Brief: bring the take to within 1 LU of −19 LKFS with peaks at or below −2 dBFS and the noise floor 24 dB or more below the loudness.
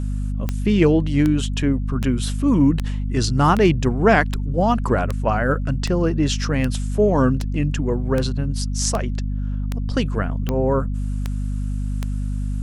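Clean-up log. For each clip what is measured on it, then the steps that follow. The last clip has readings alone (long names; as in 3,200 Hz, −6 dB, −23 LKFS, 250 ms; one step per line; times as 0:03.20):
number of clicks 16; mains hum 50 Hz; hum harmonics up to 250 Hz; level of the hum −21 dBFS; integrated loudness −21.0 LKFS; sample peak −2.5 dBFS; target loudness −19.0 LKFS
→ click removal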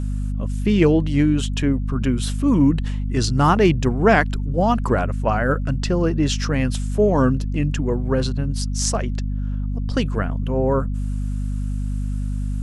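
number of clicks 0; mains hum 50 Hz; hum harmonics up to 250 Hz; level of the hum −21 dBFS
→ mains-hum notches 50/100/150/200/250 Hz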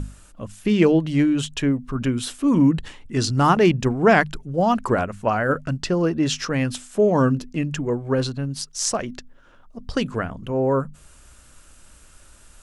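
mains hum none found; integrated loudness −21.5 LKFS; sample peak −3.5 dBFS; target loudness −19.0 LKFS
→ level +2.5 dB
brickwall limiter −2 dBFS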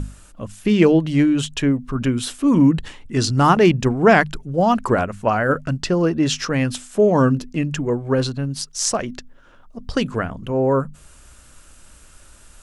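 integrated loudness −19.0 LKFS; sample peak −2.0 dBFS; background noise floor −48 dBFS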